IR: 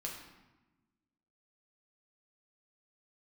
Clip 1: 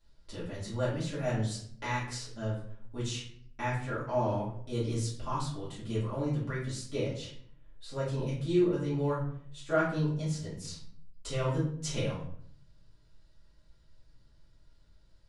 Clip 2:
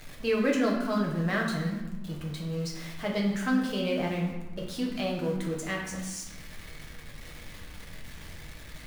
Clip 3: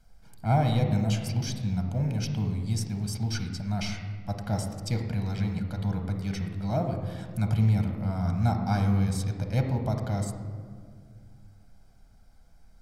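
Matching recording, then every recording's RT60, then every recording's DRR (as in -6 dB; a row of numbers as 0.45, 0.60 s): 2; 0.60, 1.1, 2.1 s; -10.5, -2.0, 3.5 dB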